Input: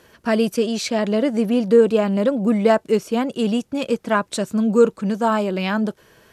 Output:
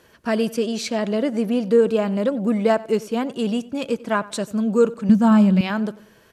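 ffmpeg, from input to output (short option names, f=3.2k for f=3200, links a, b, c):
-filter_complex "[0:a]asettb=1/sr,asplit=3[a][b][c];[a]atrim=end=5.094[d];[b]atrim=start=5.09:end=5.61,asetpts=PTS-STARTPTS,afade=t=in:d=0.004:c=qsin,afade=t=out:st=0.516:d=0.004:c=qsin,lowshelf=f=270:t=q:w=3:g=8[e];[c]atrim=start=5.606[f];[d][e]acrossfade=d=0.004:c1=hsin:c2=qsin[g];[g][f]acrossfade=d=0.004:c1=qsin:c2=hsin,asplit=2[h][i];[i]adelay=93,lowpass=f=4.5k:p=1,volume=-19.5dB,asplit=2[j][k];[k]adelay=93,lowpass=f=4.5k:p=1,volume=0.4,asplit=2[l][m];[m]adelay=93,lowpass=f=4.5k:p=1,volume=0.4[n];[h][j][l][n]amix=inputs=4:normalize=0,volume=-2.5dB"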